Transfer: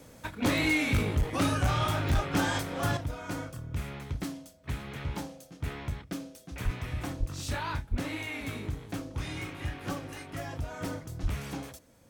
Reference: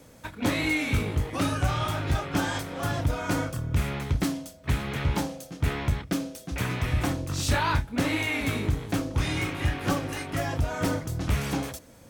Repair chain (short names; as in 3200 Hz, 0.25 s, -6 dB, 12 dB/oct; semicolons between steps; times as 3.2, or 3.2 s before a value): clip repair -20.5 dBFS; de-click; de-plosive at 1.18/2.14/6.64/7.19/7.9/11.22; gain correction +9 dB, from 2.97